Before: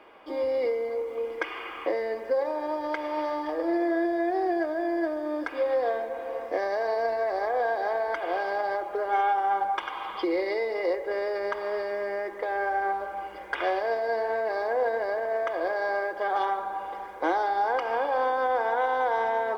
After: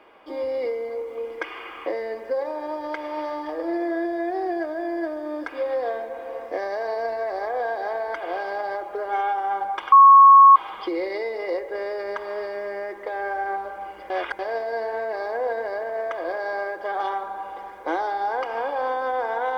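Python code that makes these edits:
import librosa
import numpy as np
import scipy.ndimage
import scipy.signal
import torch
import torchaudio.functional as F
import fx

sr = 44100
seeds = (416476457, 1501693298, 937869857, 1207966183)

y = fx.edit(x, sr, fx.insert_tone(at_s=9.92, length_s=0.64, hz=1100.0, db=-6.5),
    fx.reverse_span(start_s=13.46, length_s=0.29), tone=tone)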